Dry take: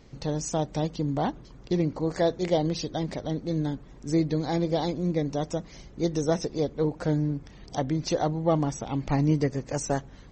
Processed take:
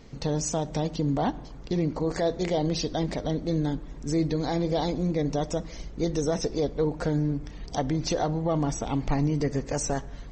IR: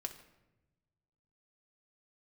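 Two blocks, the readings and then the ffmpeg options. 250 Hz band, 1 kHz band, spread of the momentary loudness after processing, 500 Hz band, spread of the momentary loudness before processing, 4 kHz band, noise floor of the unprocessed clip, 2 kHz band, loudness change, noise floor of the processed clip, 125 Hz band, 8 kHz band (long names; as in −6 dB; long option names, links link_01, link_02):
0.0 dB, 0.0 dB, 5 LU, 0.0 dB, 7 LU, +1.5 dB, −49 dBFS, +0.5 dB, 0.0 dB, −42 dBFS, 0.0 dB, +3.0 dB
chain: -filter_complex "[0:a]asubboost=boost=2:cutoff=78,alimiter=limit=-20.5dB:level=0:latency=1:release=36,asplit=2[link_01][link_02];[1:a]atrim=start_sample=2205[link_03];[link_02][link_03]afir=irnorm=-1:irlink=0,volume=-3.5dB[link_04];[link_01][link_04]amix=inputs=2:normalize=0"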